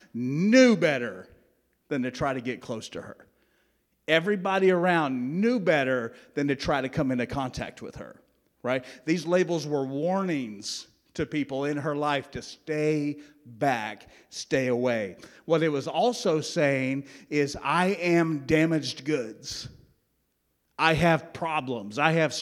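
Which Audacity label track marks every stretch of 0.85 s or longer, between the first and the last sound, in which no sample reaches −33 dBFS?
3.120000	4.080000	silence
19.660000	20.790000	silence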